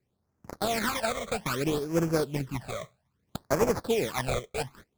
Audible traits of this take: aliases and images of a low sample rate 2900 Hz, jitter 20%; phasing stages 12, 0.62 Hz, lowest notch 270–3700 Hz

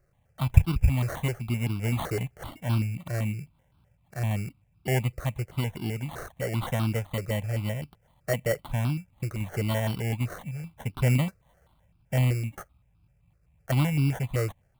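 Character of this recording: aliases and images of a low sample rate 2500 Hz, jitter 0%; notches that jump at a steady rate 7.8 Hz 910–1900 Hz

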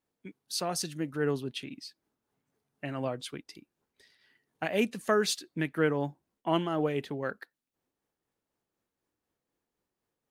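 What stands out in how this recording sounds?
tremolo triangle 4 Hz, depth 40%

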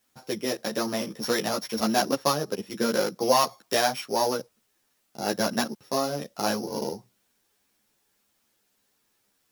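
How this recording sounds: a buzz of ramps at a fixed pitch in blocks of 8 samples; tremolo saw down 0.57 Hz, depth 30%; a quantiser's noise floor 12-bit, dither triangular; a shimmering, thickened sound

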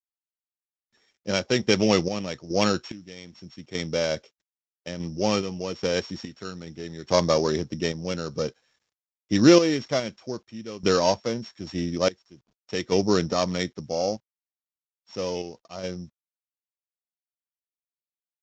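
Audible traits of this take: a buzz of ramps at a fixed pitch in blocks of 8 samples; random-step tremolo 2.4 Hz, depth 90%; a quantiser's noise floor 12-bit, dither none; Vorbis

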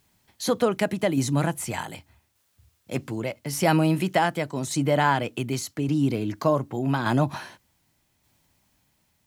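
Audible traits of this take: a quantiser's noise floor 12-bit, dither triangular; tremolo saw down 0.85 Hz, depth 40%

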